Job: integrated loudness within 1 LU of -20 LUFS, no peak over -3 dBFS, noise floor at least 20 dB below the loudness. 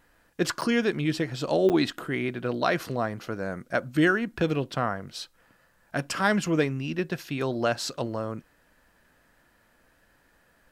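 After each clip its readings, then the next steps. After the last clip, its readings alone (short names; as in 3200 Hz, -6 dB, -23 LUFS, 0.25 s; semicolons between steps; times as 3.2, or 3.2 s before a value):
dropouts 2; longest dropout 8.9 ms; loudness -27.5 LUFS; peak -11.0 dBFS; loudness target -20.0 LUFS
-> interpolate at 0.61/1.69, 8.9 ms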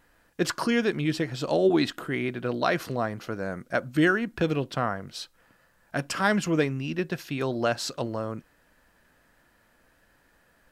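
dropouts 0; loudness -27.5 LUFS; peak -11.0 dBFS; loudness target -20.0 LUFS
-> gain +7.5 dB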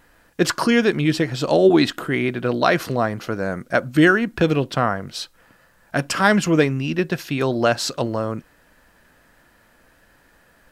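loudness -20.0 LUFS; peak -3.5 dBFS; noise floor -57 dBFS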